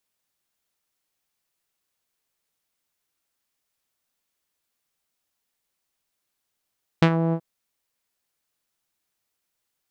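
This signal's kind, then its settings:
subtractive voice saw E3 12 dB per octave, low-pass 710 Hz, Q 1.1, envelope 2.5 octaves, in 0.16 s, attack 4.4 ms, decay 0.07 s, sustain −9 dB, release 0.07 s, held 0.31 s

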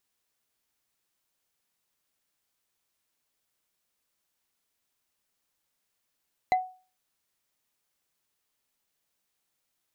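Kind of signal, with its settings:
struck wood bar, lowest mode 742 Hz, decay 0.37 s, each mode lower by 9 dB, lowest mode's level −17 dB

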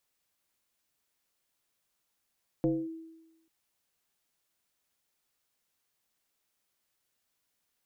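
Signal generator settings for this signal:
two-operator FM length 0.84 s, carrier 325 Hz, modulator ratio 0.56, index 1, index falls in 0.24 s linear, decay 1.03 s, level −22 dB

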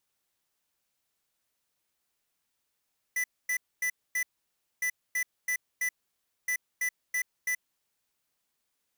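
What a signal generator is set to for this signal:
beeps in groups square 1,990 Hz, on 0.08 s, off 0.25 s, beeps 4, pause 0.59 s, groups 3, −29 dBFS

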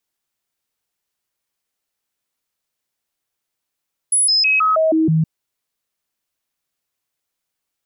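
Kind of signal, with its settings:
stepped sweep 10,200 Hz down, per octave 1, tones 7, 0.16 s, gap 0.00 s −12 dBFS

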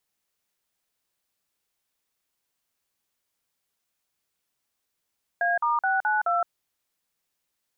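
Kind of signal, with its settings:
touch tones "A*692", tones 167 ms, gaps 46 ms, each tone −23.5 dBFS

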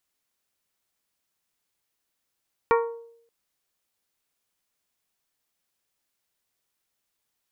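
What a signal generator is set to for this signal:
struck glass bell, length 0.58 s, lowest mode 464 Hz, modes 6, decay 0.70 s, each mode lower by 3 dB, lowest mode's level −16 dB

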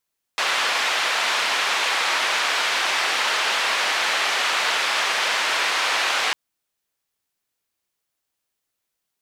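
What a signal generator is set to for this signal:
band-limited noise 720–3,000 Hz, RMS −22 dBFS 5.95 s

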